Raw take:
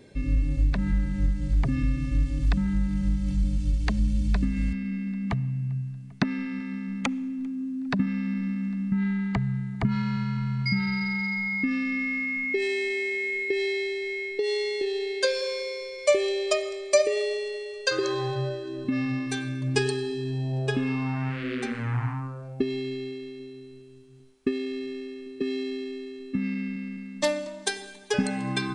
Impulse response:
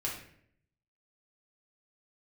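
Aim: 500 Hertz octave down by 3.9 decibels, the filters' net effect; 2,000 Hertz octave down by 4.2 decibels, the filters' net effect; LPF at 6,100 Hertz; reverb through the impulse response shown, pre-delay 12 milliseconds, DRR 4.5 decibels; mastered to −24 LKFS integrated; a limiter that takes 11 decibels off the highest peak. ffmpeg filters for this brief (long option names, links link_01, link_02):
-filter_complex "[0:a]lowpass=6100,equalizer=frequency=500:width_type=o:gain=-5,equalizer=frequency=2000:width_type=o:gain=-4.5,alimiter=limit=-23dB:level=0:latency=1,asplit=2[link_01][link_02];[1:a]atrim=start_sample=2205,adelay=12[link_03];[link_02][link_03]afir=irnorm=-1:irlink=0,volume=-8dB[link_04];[link_01][link_04]amix=inputs=2:normalize=0,volume=5.5dB"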